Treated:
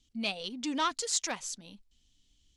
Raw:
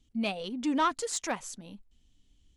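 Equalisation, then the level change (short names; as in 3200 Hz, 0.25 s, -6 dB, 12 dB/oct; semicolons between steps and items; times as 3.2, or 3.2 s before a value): bell 4900 Hz +12 dB 2 oct; -5.5 dB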